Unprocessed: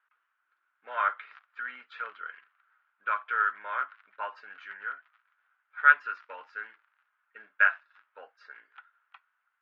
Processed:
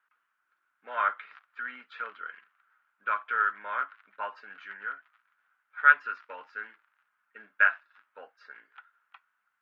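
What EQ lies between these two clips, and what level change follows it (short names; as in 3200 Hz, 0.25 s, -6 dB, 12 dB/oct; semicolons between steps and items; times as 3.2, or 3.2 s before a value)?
bell 210 Hz +8.5 dB 1.2 oct; 0.0 dB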